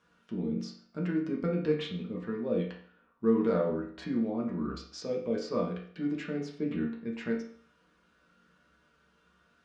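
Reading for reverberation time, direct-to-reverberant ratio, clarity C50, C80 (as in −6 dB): 0.50 s, −3.0 dB, 6.0 dB, 10.5 dB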